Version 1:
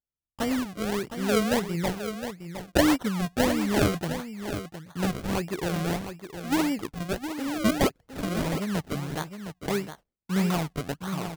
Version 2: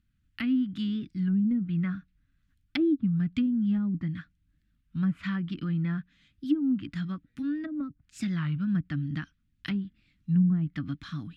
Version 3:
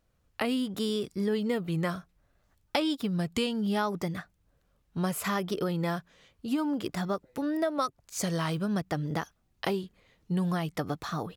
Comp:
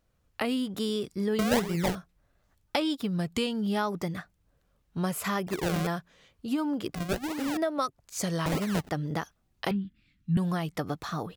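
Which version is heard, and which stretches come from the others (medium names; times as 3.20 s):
3
1.39–1.95 s: from 1
5.47–5.87 s: from 1
6.95–7.57 s: from 1
8.46–8.89 s: from 1
9.71–10.37 s: from 2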